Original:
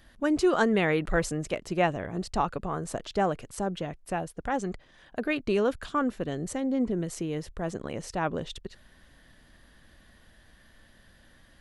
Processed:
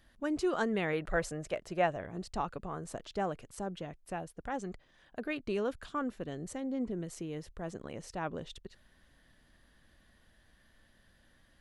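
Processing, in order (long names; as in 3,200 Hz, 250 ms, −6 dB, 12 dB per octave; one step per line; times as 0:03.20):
0:00.93–0:02.01: graphic EQ with 15 bands 250 Hz −4 dB, 630 Hz +6 dB, 1,600 Hz +4 dB
level −8 dB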